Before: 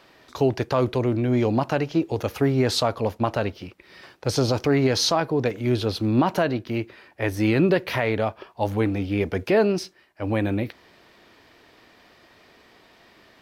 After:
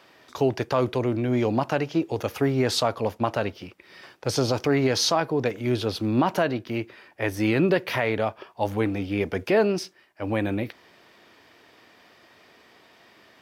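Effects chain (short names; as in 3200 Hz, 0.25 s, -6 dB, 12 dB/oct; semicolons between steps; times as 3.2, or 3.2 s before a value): HPF 82 Hz; low shelf 400 Hz -3 dB; notch 4100 Hz, Q 18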